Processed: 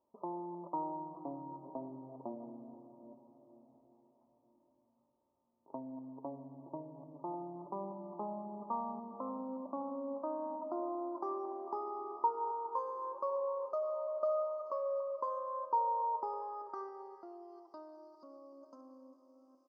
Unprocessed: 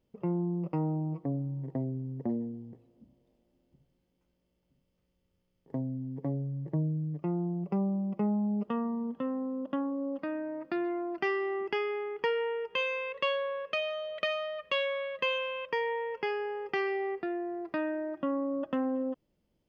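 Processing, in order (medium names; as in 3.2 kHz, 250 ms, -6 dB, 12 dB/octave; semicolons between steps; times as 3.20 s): chunks repeated in reverse 391 ms, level -12.5 dB; in parallel at +2 dB: compression, threshold -45 dBFS, peak gain reduction 18.5 dB; on the sum: elliptic band-stop 1.1–5.4 kHz, stop band 40 dB; on a send at -8 dB: reverberation RT60 5.4 s, pre-delay 22 ms; on the sum: band-pass sweep 950 Hz -> 4.8 kHz, 16.21–18.18 s; comb 3.2 ms, depth 48%; trim +1.5 dB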